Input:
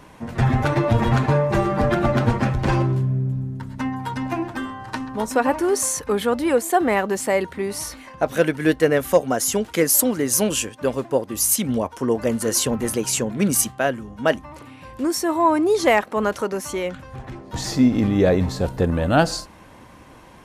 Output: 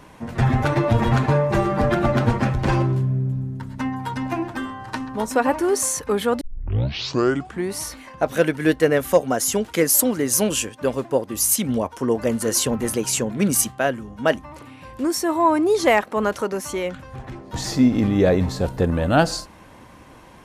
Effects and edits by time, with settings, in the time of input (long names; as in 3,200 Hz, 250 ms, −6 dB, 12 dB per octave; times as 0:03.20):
0:06.41: tape start 1.32 s